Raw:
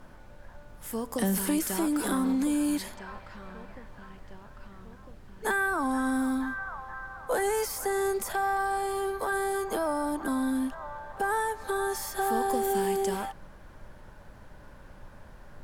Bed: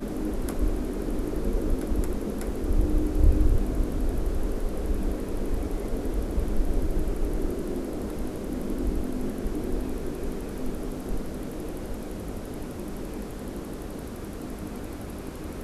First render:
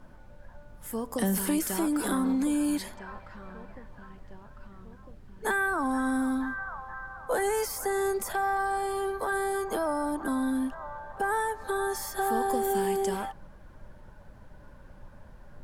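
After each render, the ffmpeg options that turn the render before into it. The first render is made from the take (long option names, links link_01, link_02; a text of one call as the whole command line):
ffmpeg -i in.wav -af "afftdn=noise_reduction=6:noise_floor=-50" out.wav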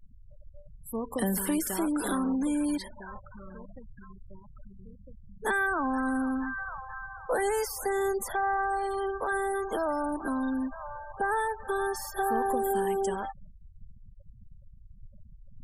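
ffmpeg -i in.wav -af "afftfilt=real='re*gte(hypot(re,im),0.0141)':imag='im*gte(hypot(re,im),0.0141)':win_size=1024:overlap=0.75,adynamicequalizer=threshold=0.00501:dfrequency=170:dqfactor=1.2:tfrequency=170:tqfactor=1.2:attack=5:release=100:ratio=0.375:range=2:mode=cutabove:tftype=bell" out.wav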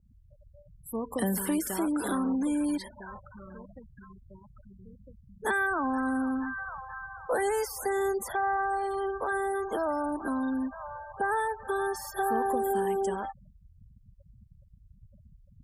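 ffmpeg -i in.wav -af "highpass=45,adynamicequalizer=threshold=0.00891:dfrequency=1900:dqfactor=0.7:tfrequency=1900:tqfactor=0.7:attack=5:release=100:ratio=0.375:range=2:mode=cutabove:tftype=highshelf" out.wav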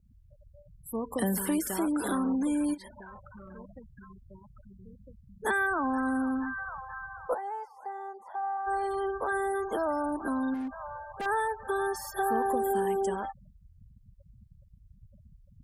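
ffmpeg -i in.wav -filter_complex "[0:a]asplit=3[link_01][link_02][link_03];[link_01]afade=type=out:start_time=2.73:duration=0.02[link_04];[link_02]acompressor=threshold=-42dB:ratio=10:attack=3.2:release=140:knee=1:detection=peak,afade=type=in:start_time=2.73:duration=0.02,afade=type=out:start_time=3.56:duration=0.02[link_05];[link_03]afade=type=in:start_time=3.56:duration=0.02[link_06];[link_04][link_05][link_06]amix=inputs=3:normalize=0,asplit=3[link_07][link_08][link_09];[link_07]afade=type=out:start_time=7.33:duration=0.02[link_10];[link_08]bandpass=frequency=890:width_type=q:width=4.3,afade=type=in:start_time=7.33:duration=0.02,afade=type=out:start_time=8.66:duration=0.02[link_11];[link_09]afade=type=in:start_time=8.66:duration=0.02[link_12];[link_10][link_11][link_12]amix=inputs=3:normalize=0,asettb=1/sr,asplit=3[link_13][link_14][link_15];[link_13]atrim=end=10.544[link_16];[link_14]atrim=start=10.54:end=11.26,asetpts=PTS-STARTPTS,afade=type=in:duration=0.004:curve=qsin,afade=type=out:start_time=0.716:duration=0.004:curve=qsin,asoftclip=type=hard:threshold=-31.5dB[link_17];[link_15]atrim=start=11.256[link_18];[link_16][link_17]acrossfade=duration=0.004:curve1=hsin:curve2=qsin[link_19];[link_19][link_18]acrossfade=duration=0.004:curve1=qsin:curve2=hsin" out.wav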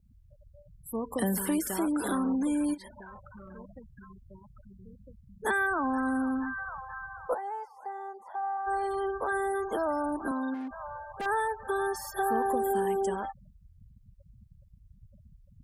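ffmpeg -i in.wav -filter_complex "[0:a]asettb=1/sr,asplit=3[link_01][link_02][link_03];[link_01]atrim=end=10.314[link_04];[link_02]atrim=start=10.31:end=10.71,asetpts=PTS-STARTPTS,afade=type=in:duration=0.004:curve=qsin,afade=type=out:start_time=0.396:duration=0.004:curve=qsin,highpass=250,lowpass=6500[link_05];[link_03]atrim=start=10.706[link_06];[link_04][link_05]acrossfade=duration=0.004:curve1=hsin:curve2=qsin[link_07];[link_07][link_06]acrossfade=duration=0.004:curve1=qsin:curve2=hsin" out.wav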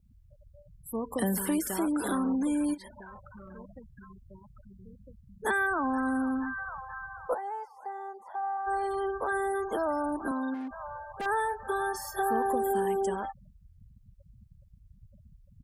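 ffmpeg -i in.wav -filter_complex "[0:a]asplit=3[link_01][link_02][link_03];[link_01]afade=type=out:start_time=11.45:duration=0.02[link_04];[link_02]asplit=2[link_05][link_06];[link_06]adelay=24,volume=-8dB[link_07];[link_05][link_07]amix=inputs=2:normalize=0,afade=type=in:start_time=11.45:duration=0.02,afade=type=out:start_time=12.2:duration=0.02[link_08];[link_03]afade=type=in:start_time=12.2:duration=0.02[link_09];[link_04][link_08][link_09]amix=inputs=3:normalize=0" out.wav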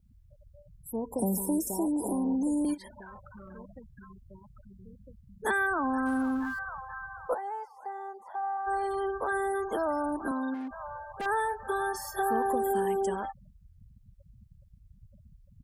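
ffmpeg -i in.wav -filter_complex "[0:a]asettb=1/sr,asplit=3[link_01][link_02][link_03];[link_01]atrim=end=0.914[link_04];[link_02]atrim=start=0.91:end=2.65,asetpts=PTS-STARTPTS,afade=type=in:duration=0.004:curve=qsin,afade=type=out:start_time=1.736:duration=0.004:curve=qsin,asuperstop=centerf=2300:order=20:qfactor=0.53[link_05];[link_03]atrim=start=2.646[link_06];[link_04][link_05]acrossfade=duration=0.004:curve1=hsin:curve2=qsin[link_07];[link_07][link_06]acrossfade=duration=0.004:curve1=qsin:curve2=hsin,asettb=1/sr,asplit=3[link_08][link_09][link_10];[link_08]atrim=end=6.064[link_11];[link_09]atrim=start=6.06:end=6.59,asetpts=PTS-STARTPTS,afade=type=in:duration=0.004:curve=qsin,afade=type=out:start_time=0.526:duration=0.004:curve=qsin,aeval=exprs='val(0)+0.5*0.00422*sgn(val(0))':channel_layout=same[link_12];[link_10]atrim=start=6.586[link_13];[link_11][link_12]acrossfade=duration=0.004:curve1=hsin:curve2=qsin[link_14];[link_14][link_13]acrossfade=duration=0.004:curve1=qsin:curve2=hsin" out.wav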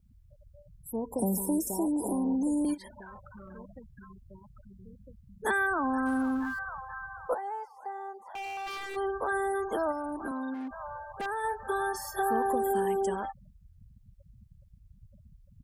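ffmpeg -i in.wav -filter_complex "[0:a]asplit=3[link_01][link_02][link_03];[link_01]afade=type=out:start_time=8.23:duration=0.02[link_04];[link_02]aeval=exprs='0.0224*(abs(mod(val(0)/0.0224+3,4)-2)-1)':channel_layout=same,afade=type=in:start_time=8.23:duration=0.02,afade=type=out:start_time=8.95:duration=0.02[link_05];[link_03]afade=type=in:start_time=8.95:duration=0.02[link_06];[link_04][link_05][link_06]amix=inputs=3:normalize=0,asplit=3[link_07][link_08][link_09];[link_07]afade=type=out:start_time=9.91:duration=0.02[link_10];[link_08]acompressor=threshold=-32dB:ratio=2.5:attack=3.2:release=140:knee=1:detection=peak,afade=type=in:start_time=9.91:duration=0.02,afade=type=out:start_time=11.43:duration=0.02[link_11];[link_09]afade=type=in:start_time=11.43:duration=0.02[link_12];[link_10][link_11][link_12]amix=inputs=3:normalize=0" out.wav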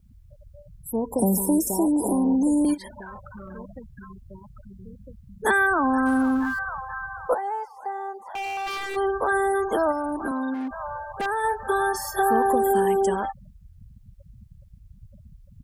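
ffmpeg -i in.wav -af "volume=7.5dB" out.wav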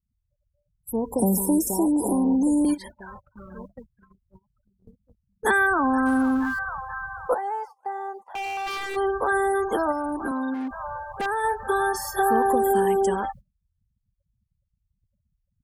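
ffmpeg -i in.wav -af "bandreject=frequency=630:width=12,agate=range=-26dB:threshold=-39dB:ratio=16:detection=peak" out.wav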